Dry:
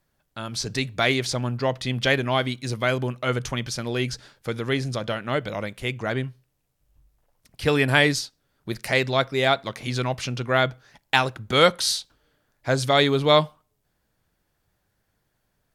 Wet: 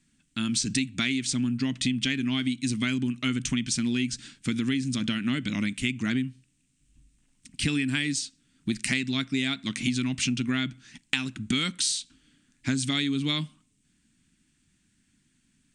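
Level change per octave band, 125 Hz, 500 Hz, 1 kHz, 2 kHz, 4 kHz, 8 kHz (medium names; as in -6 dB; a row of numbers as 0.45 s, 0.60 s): -5.0 dB, -19.5 dB, -17.0 dB, -6.5 dB, -3.5 dB, +2.5 dB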